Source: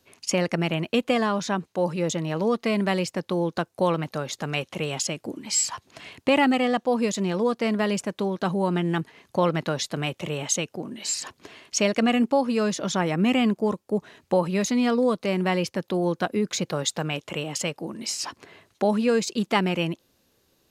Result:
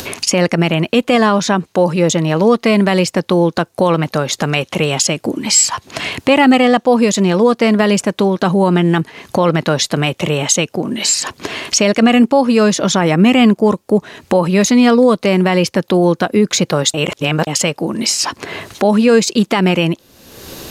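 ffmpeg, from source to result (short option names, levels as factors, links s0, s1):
-filter_complex "[0:a]asplit=3[s0][s1][s2];[s0]atrim=end=16.942[s3];[s1]atrim=start=16.938:end=17.472,asetpts=PTS-STARTPTS,areverse[s4];[s2]atrim=start=17.468[s5];[s3][s4]acrossfade=d=0.004:c1=hsin:c2=hsin[s6];[s6][s5]acrossfade=d=0.004:c1=hsin:c2=hsin,acompressor=mode=upward:threshold=0.0631:ratio=2.5,alimiter=level_in=4.73:limit=0.891:release=50:level=0:latency=1,volume=0.891"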